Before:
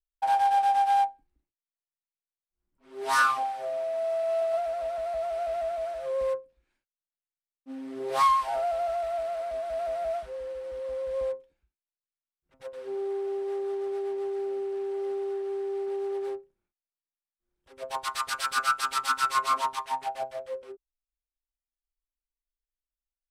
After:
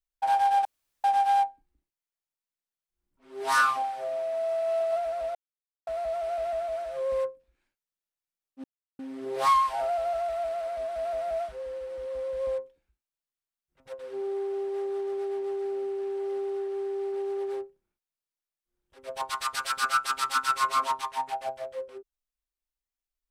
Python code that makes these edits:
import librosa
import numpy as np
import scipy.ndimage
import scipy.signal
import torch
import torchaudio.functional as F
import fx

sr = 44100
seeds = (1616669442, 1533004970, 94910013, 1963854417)

y = fx.edit(x, sr, fx.insert_room_tone(at_s=0.65, length_s=0.39),
    fx.insert_silence(at_s=4.96, length_s=0.52),
    fx.insert_silence(at_s=7.73, length_s=0.35), tone=tone)